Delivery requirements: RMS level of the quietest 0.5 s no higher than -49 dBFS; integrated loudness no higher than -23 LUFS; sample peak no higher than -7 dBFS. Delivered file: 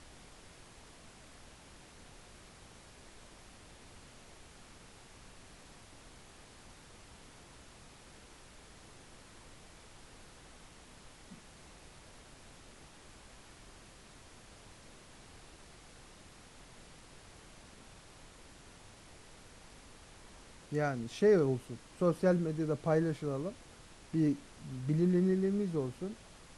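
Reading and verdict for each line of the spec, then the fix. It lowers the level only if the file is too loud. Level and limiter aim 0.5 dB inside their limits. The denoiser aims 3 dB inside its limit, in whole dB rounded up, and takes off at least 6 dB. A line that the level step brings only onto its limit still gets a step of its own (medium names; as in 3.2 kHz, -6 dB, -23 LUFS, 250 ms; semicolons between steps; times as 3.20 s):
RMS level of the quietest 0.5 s -56 dBFS: pass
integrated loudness -33.0 LUFS: pass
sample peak -17.0 dBFS: pass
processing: none needed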